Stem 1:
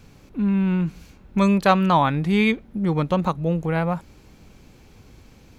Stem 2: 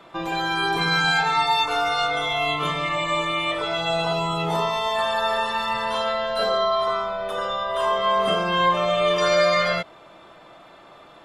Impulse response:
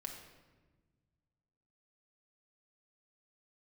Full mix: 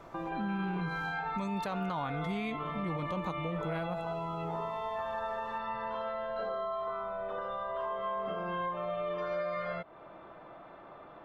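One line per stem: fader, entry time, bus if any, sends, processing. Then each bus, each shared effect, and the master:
−11.5 dB, 0.00 s, no send, no processing
−2.5 dB, 0.00 s, no send, low-pass filter 1,600 Hz 12 dB per octave; downward compressor 3 to 1, threshold −34 dBFS, peak gain reduction 13.5 dB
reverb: not used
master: brickwall limiter −26.5 dBFS, peak gain reduction 11 dB

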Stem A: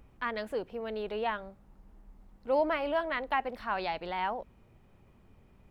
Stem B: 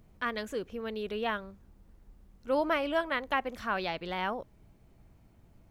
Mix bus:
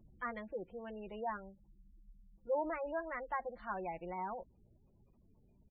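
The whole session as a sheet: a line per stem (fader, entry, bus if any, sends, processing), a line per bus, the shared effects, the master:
−8.5 dB, 0.00 s, no send, treble cut that deepens with the level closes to 2,100 Hz, closed at −28.5 dBFS
−2.5 dB, 5.5 ms, no send, low-pass filter 1,400 Hz 12 dB per octave; automatic ducking −11 dB, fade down 0.55 s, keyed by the first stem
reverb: not used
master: gate on every frequency bin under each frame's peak −20 dB strong

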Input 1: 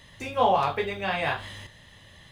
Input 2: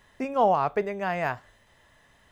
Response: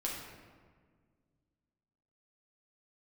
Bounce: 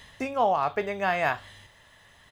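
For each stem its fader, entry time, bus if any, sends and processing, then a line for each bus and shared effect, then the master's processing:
+1.0 dB, 0.00 s, no send, low-shelf EQ 110 Hz +9 dB; automatic ducking −11 dB, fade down 0.30 s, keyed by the second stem
+1.5 dB, 3.7 ms, no send, no processing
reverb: not used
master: speech leveller 0.5 s; low-shelf EQ 390 Hz −8.5 dB

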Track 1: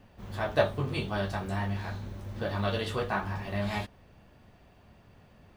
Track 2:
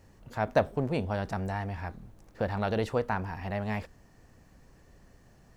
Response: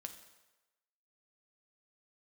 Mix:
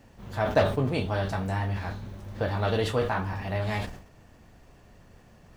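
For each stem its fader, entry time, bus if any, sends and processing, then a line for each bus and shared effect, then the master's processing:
−11.5 dB, 0.00 s, no send, sine wavefolder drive 7 dB, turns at −10.5 dBFS
+0.5 dB, 0.00 s, no send, no processing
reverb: not used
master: level that may fall only so fast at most 90 dB per second

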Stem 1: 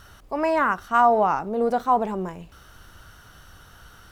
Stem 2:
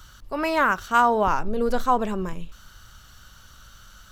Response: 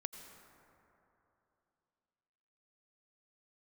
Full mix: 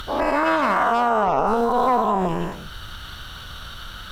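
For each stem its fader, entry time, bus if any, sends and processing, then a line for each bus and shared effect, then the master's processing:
−1.0 dB, 0.00 s, no send, every bin's largest magnitude spread in time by 480 ms
+1.0 dB, 0.00 s, no send, high shelf with overshoot 4,800 Hz −9 dB, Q 3; upward compression, threshold −21 dBFS; tube saturation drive 15 dB, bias 0.6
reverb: not used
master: brickwall limiter −11 dBFS, peak gain reduction 9 dB

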